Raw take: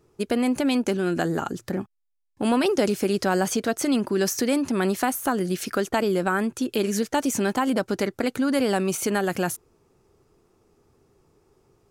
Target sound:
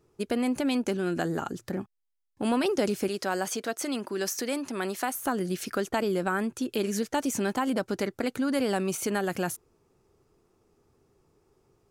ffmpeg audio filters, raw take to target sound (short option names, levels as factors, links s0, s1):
-filter_complex "[0:a]asettb=1/sr,asplit=3[s0][s1][s2];[s0]atrim=end=3.084[s3];[s1]atrim=start=3.08:end=5.15,asetpts=PTS-STARTPTS,afade=t=in:d=0.004:c=qsin,afade=t=out:st=2.066:d=0.004:c=qsin,highpass=f=420:p=1[s4];[s2]atrim=start=5.146[s5];[s3][s4]acrossfade=d=0.004:c1=hsin:c2=qsin[s6];[s6][s5]acrossfade=d=0.004:c1=qsin:c2=hsin,volume=0.596"